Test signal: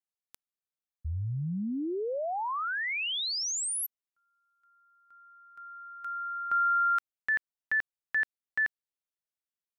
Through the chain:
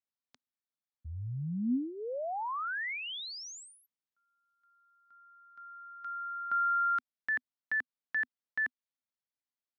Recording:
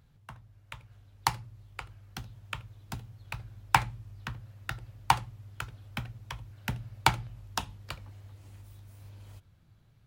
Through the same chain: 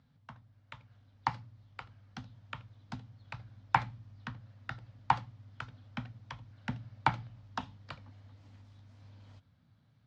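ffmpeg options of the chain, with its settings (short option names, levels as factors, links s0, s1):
-filter_complex "[0:a]highpass=100,equalizer=f=250:t=q:w=4:g=9,equalizer=f=370:t=q:w=4:g=-10,equalizer=f=2600:t=q:w=4:g=-4,lowpass=f=5400:w=0.5412,lowpass=f=5400:w=1.3066,acrossover=split=2600[s0][s1];[s1]acompressor=threshold=0.00891:ratio=4:attack=1:release=60[s2];[s0][s2]amix=inputs=2:normalize=0,volume=0.708"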